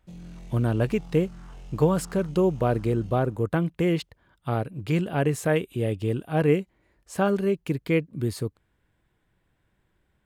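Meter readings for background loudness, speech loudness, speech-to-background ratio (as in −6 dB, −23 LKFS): −45.5 LKFS, −26.0 LKFS, 19.5 dB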